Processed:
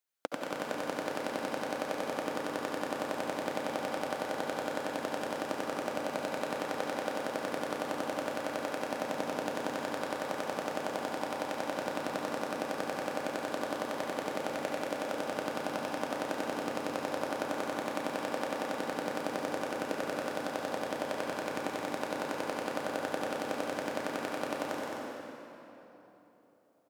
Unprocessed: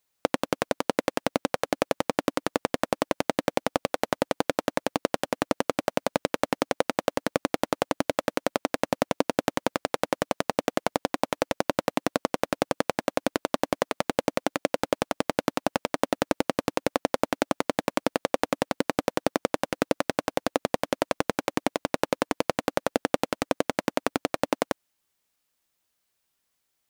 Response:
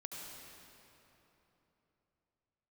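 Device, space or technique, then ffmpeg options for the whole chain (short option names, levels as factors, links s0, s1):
stadium PA: -filter_complex "[0:a]highpass=f=210:p=1,equalizer=f=1500:t=o:w=0.38:g=4,aecho=1:1:215.7|256.6:0.501|0.355[s0];[1:a]atrim=start_sample=2205[s1];[s0][s1]afir=irnorm=-1:irlink=0,volume=0.473"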